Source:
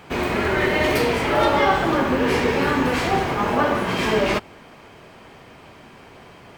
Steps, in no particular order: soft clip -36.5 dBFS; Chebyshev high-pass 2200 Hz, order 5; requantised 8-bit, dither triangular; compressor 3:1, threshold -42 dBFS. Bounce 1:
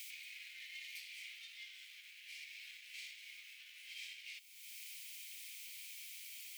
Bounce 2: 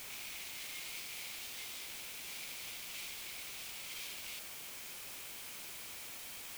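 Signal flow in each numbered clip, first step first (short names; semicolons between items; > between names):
requantised > compressor > soft clip > Chebyshev high-pass; soft clip > compressor > Chebyshev high-pass > requantised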